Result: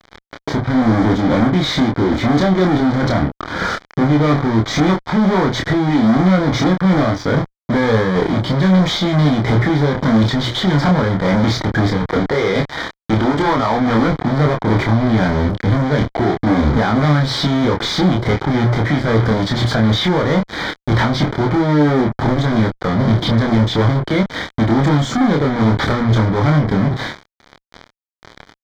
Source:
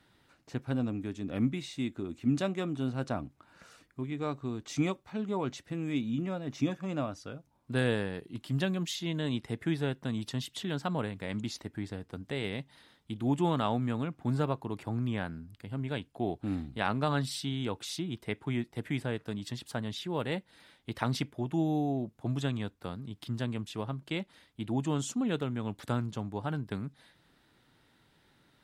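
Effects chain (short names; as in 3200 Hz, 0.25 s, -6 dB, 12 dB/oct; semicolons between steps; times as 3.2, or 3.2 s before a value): 12.05–14.08 tone controls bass -11 dB, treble -5 dB; notches 60/120 Hz; compressor 8:1, threshold -37 dBFS, peak gain reduction 14 dB; sample leveller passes 2; step gate "x.x..xx." 92 bpm -12 dB; fuzz box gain 58 dB, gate -58 dBFS; Butterworth band-stop 2700 Hz, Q 4; air absorption 220 m; doubler 27 ms -3 dB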